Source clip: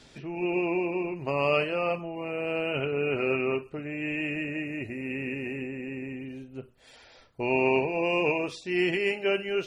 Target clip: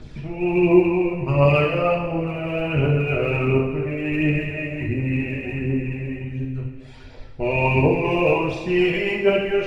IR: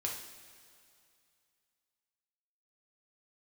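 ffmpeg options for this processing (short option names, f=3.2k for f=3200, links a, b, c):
-filter_complex "[0:a]aemphasis=mode=reproduction:type=bsi,aphaser=in_gain=1:out_gain=1:delay=1.9:decay=0.6:speed=1.4:type=triangular[a];[1:a]atrim=start_sample=2205[b];[a][b]afir=irnorm=-1:irlink=0,volume=3dB"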